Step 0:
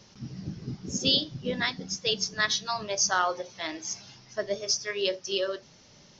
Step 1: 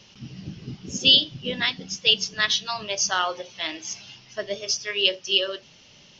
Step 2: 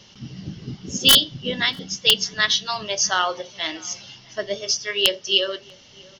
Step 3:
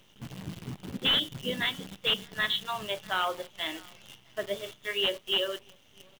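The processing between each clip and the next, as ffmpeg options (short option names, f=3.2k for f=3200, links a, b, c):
-af "equalizer=f=2.9k:w=2.3:g=13.5"
-filter_complex "[0:a]aeval=exprs='(mod(1.88*val(0)+1,2)-1)/1.88':c=same,bandreject=f=2.5k:w=8.4,asplit=2[a][b];[b]adelay=641.4,volume=-25dB,highshelf=f=4k:g=-14.4[c];[a][c]amix=inputs=2:normalize=0,volume=3dB"
-af "aresample=8000,volume=15.5dB,asoftclip=hard,volume=-15.5dB,aresample=44100,acrusher=bits=7:dc=4:mix=0:aa=0.000001,volume=-6dB"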